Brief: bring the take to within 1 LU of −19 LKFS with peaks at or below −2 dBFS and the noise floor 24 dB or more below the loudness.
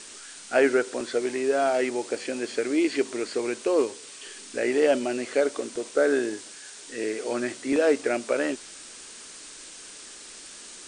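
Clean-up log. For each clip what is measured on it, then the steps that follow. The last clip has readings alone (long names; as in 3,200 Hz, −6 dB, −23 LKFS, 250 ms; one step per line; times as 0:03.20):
background noise floor −44 dBFS; target noise floor −50 dBFS; integrated loudness −26.0 LKFS; sample peak −9.5 dBFS; target loudness −19.0 LKFS
→ broadband denoise 6 dB, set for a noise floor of −44 dBFS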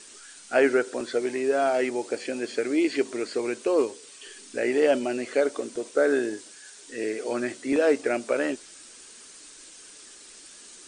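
background noise floor −48 dBFS; target noise floor −50 dBFS
→ broadband denoise 6 dB, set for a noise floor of −48 dBFS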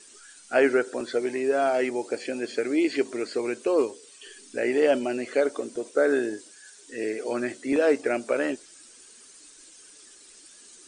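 background noise floor −51 dBFS; integrated loudness −26.0 LKFS; sample peak −9.5 dBFS; target loudness −19.0 LKFS
→ level +7 dB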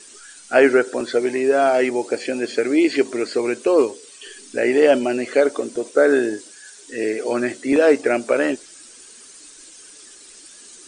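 integrated loudness −19.0 LKFS; sample peak −2.5 dBFS; background noise floor −44 dBFS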